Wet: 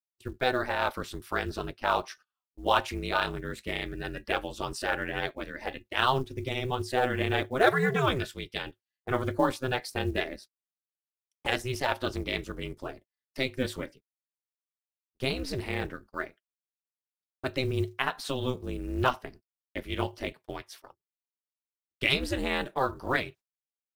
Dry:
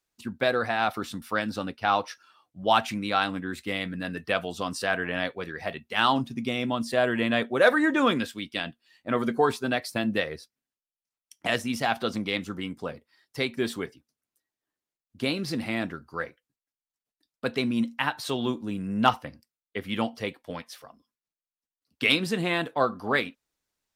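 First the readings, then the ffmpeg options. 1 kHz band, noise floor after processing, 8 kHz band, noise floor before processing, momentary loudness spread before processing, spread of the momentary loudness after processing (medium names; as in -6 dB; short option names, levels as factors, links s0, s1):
-3.0 dB, under -85 dBFS, -3.0 dB, under -85 dBFS, 14 LU, 14 LU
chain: -af "aeval=exprs='val(0)*sin(2*PI*130*n/s)':c=same,agate=range=0.0282:threshold=0.00316:ratio=16:detection=peak,acrusher=bits=8:mode=log:mix=0:aa=0.000001"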